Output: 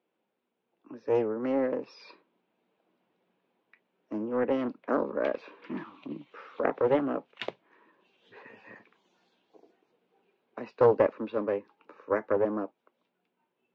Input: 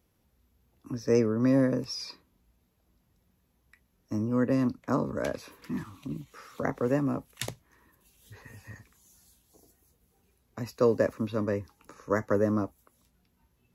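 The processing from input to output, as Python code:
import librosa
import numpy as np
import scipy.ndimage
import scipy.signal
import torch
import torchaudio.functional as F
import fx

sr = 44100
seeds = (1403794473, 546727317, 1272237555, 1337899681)

y = fx.rider(x, sr, range_db=4, speed_s=2.0)
y = fx.cabinet(y, sr, low_hz=250.0, low_slope=24, high_hz=3000.0, hz=(260.0, 1200.0, 1900.0), db=(-7, -4, -6))
y = fx.doppler_dist(y, sr, depth_ms=0.26)
y = y * 10.0 ** (2.0 / 20.0)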